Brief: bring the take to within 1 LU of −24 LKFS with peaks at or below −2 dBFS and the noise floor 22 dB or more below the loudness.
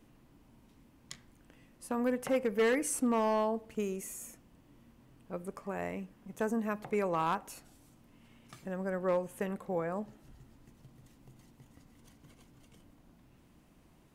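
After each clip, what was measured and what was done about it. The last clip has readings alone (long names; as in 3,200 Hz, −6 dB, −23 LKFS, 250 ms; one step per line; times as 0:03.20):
share of clipped samples 0.5%; peaks flattened at −23.0 dBFS; integrated loudness −34.0 LKFS; sample peak −23.0 dBFS; target loudness −24.0 LKFS
→ clipped peaks rebuilt −23 dBFS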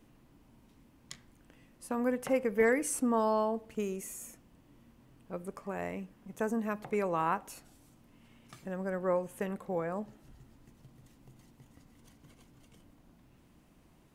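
share of clipped samples 0.0%; integrated loudness −33.5 LKFS; sample peak −16.0 dBFS; target loudness −24.0 LKFS
→ level +9.5 dB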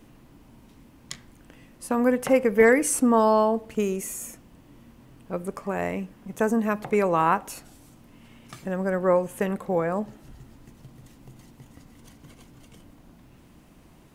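integrated loudness −24.0 LKFS; sample peak −6.5 dBFS; background noise floor −54 dBFS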